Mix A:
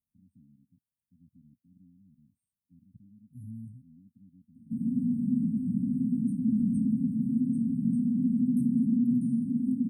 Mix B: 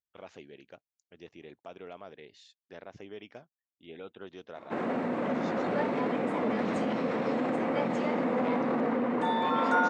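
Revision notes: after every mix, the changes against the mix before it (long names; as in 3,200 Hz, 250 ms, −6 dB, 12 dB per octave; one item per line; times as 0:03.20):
second voice: muted
background −8.0 dB
master: remove linear-phase brick-wall band-stop 270–8,300 Hz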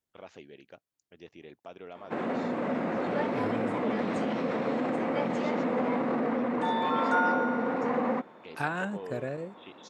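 second voice: unmuted
background: entry −2.60 s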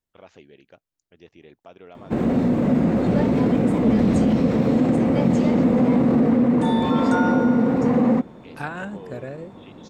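background: remove resonant band-pass 1,400 Hz, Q 0.76
master: remove high-pass filter 130 Hz 6 dB per octave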